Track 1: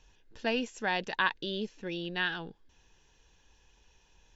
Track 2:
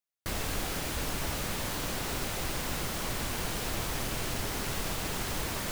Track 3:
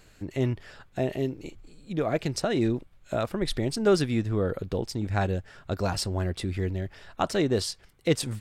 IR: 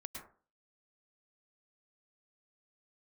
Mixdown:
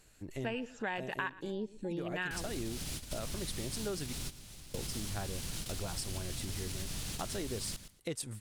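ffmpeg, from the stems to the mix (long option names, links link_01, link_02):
-filter_complex "[0:a]afwtdn=0.0141,volume=3dB,asplit=2[link_01][link_02];[link_02]volume=-22dB[link_03];[1:a]acrossover=split=5800[link_04][link_05];[link_05]acompressor=threshold=-52dB:ratio=4:attack=1:release=60[link_06];[link_04][link_06]amix=inputs=2:normalize=0,alimiter=level_in=5dB:limit=-24dB:level=0:latency=1:release=133,volume=-5dB,acrossover=split=250|3000[link_07][link_08][link_09];[link_08]acompressor=threshold=-57dB:ratio=4[link_10];[link_07][link_10][link_09]amix=inputs=3:normalize=0,adelay=2050,volume=3dB,asplit=2[link_11][link_12];[link_12]volume=-14dB[link_13];[2:a]volume=-9.5dB,asplit=3[link_14][link_15][link_16];[link_14]atrim=end=4.13,asetpts=PTS-STARTPTS,afade=type=out:start_time=4.126:duration=0.004:curve=hsin[link_17];[link_15]atrim=start=4.13:end=4.74,asetpts=PTS-STARTPTS,volume=0[link_18];[link_16]atrim=start=4.74,asetpts=PTS-STARTPTS,afade=type=in:duration=0.004:curve=hsin[link_19];[link_17][link_18][link_19]concat=n=3:v=0:a=1,asplit=2[link_20][link_21];[link_21]apad=whole_len=342339[link_22];[link_11][link_22]sidechaingate=range=-33dB:threshold=-59dB:ratio=16:detection=peak[link_23];[link_03][link_13]amix=inputs=2:normalize=0,aecho=0:1:116|232|348:1|0.18|0.0324[link_24];[link_01][link_23][link_20][link_24]amix=inputs=4:normalize=0,equalizer=frequency=10000:width=0.91:gain=12,acompressor=threshold=-35dB:ratio=4"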